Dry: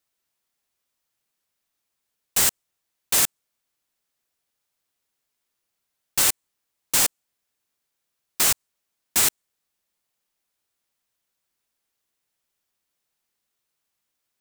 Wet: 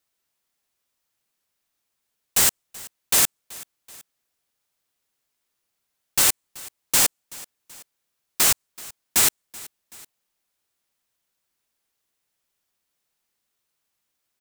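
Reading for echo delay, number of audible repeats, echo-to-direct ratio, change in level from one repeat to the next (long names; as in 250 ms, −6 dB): 380 ms, 2, −20.0 dB, −5.5 dB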